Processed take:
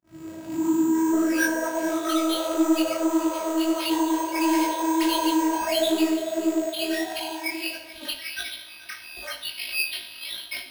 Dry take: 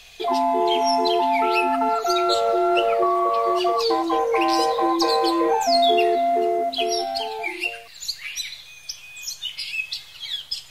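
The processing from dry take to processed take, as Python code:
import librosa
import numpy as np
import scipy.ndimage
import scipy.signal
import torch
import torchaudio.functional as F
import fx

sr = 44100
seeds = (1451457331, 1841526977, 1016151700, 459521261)

p1 = fx.tape_start_head(x, sr, length_s=2.28)
p2 = fx.low_shelf(p1, sr, hz=220.0, db=-10.0)
p3 = p2 + 10.0 ** (-17.5 / 20.0) * np.pad(p2, (int(430 * sr / 1000.0), 0))[:len(p2)]
p4 = fx.quant_companded(p3, sr, bits=4)
p5 = p3 + (p4 * 10.0 ** (-4.0 / 20.0))
p6 = fx.robotise(p5, sr, hz=322.0)
p7 = scipy.signal.sosfilt(scipy.signal.butter(4, 120.0, 'highpass', fs=sr, output='sos'), p6)
p8 = fx.bass_treble(p7, sr, bass_db=2, treble_db=-3)
p9 = fx.room_shoebox(p8, sr, seeds[0], volume_m3=540.0, walls='mixed', distance_m=0.85)
p10 = np.repeat(p9[::6], 6)[:len(p9)]
p11 = 10.0 ** (-11.0 / 20.0) * np.tanh(p10 / 10.0 ** (-11.0 / 20.0))
y = fx.detune_double(p11, sr, cents=53)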